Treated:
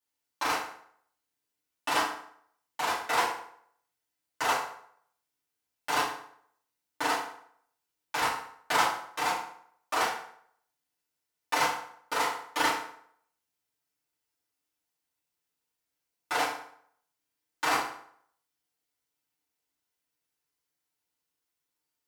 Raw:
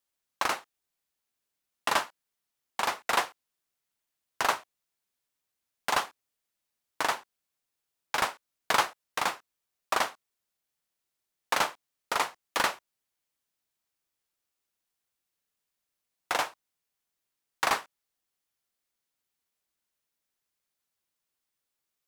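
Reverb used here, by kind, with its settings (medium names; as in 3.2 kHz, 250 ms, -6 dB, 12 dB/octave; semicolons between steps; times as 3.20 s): FDN reverb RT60 0.64 s, low-frequency decay 0.9×, high-frequency decay 0.75×, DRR -10 dB; trim -10 dB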